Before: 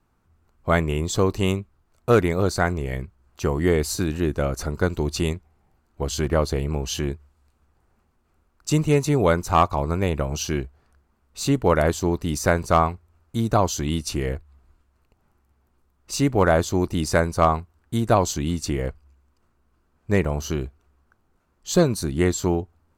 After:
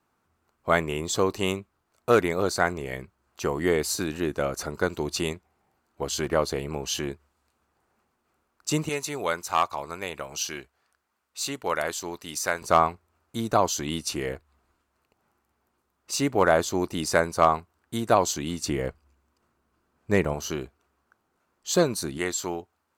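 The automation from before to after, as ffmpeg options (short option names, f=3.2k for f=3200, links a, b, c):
-af "asetnsamples=n=441:p=0,asendcmd='8.89 highpass f 1500;12.62 highpass f 380;18.61 highpass f 190;20.34 highpass f 390;22.18 highpass f 1000',highpass=f=380:p=1"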